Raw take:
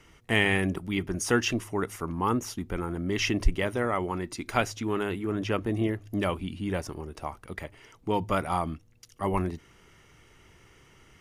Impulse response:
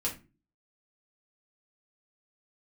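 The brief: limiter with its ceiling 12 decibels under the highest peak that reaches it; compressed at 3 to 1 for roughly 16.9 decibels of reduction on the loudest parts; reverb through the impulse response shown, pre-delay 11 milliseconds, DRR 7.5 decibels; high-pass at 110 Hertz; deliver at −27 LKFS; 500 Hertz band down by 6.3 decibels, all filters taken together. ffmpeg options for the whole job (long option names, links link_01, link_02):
-filter_complex "[0:a]highpass=110,equalizer=frequency=500:width_type=o:gain=-8.5,acompressor=threshold=-44dB:ratio=3,alimiter=level_in=10.5dB:limit=-24dB:level=0:latency=1,volume=-10.5dB,asplit=2[link_01][link_02];[1:a]atrim=start_sample=2205,adelay=11[link_03];[link_02][link_03]afir=irnorm=-1:irlink=0,volume=-11.5dB[link_04];[link_01][link_04]amix=inputs=2:normalize=0,volume=19dB"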